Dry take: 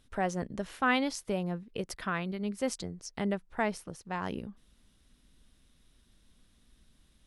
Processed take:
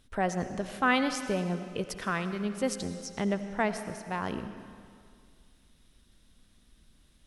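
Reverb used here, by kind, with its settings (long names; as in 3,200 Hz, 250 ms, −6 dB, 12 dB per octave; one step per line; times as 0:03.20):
comb and all-pass reverb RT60 2.1 s, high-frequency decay 0.95×, pre-delay 45 ms, DRR 9.5 dB
level +2 dB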